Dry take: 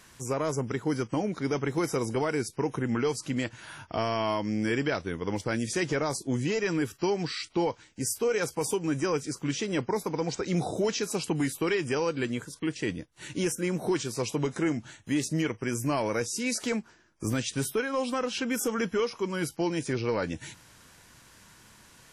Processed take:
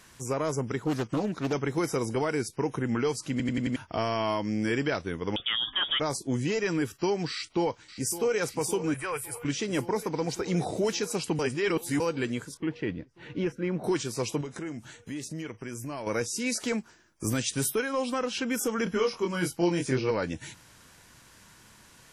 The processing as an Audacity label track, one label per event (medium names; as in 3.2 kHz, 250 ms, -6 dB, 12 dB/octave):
0.840000	1.530000	loudspeaker Doppler distortion depth 0.43 ms
3.310000	3.310000	stutter in place 0.09 s, 5 plays
5.360000	6.000000	frequency inversion carrier 3.5 kHz
7.320000	8.400000	echo throw 560 ms, feedback 80%, level -13 dB
8.940000	9.450000	FFT filter 110 Hz 0 dB, 230 Hz -24 dB, 460 Hz -6 dB, 1.2 kHz +1 dB, 2.5 kHz +3 dB, 6.1 kHz -15 dB, 10 kHz +11 dB
11.390000	12.000000	reverse
12.570000	13.840000	distance through air 320 m
14.410000	16.070000	compression 2.5:1, threshold -37 dBFS
16.780000	17.930000	treble shelf 6.9 kHz +8.5 dB
18.840000	20.110000	doubling 23 ms -3 dB